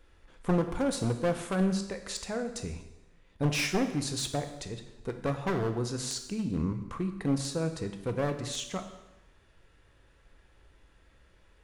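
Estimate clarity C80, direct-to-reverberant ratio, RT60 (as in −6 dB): 11.5 dB, 6.0 dB, 0.95 s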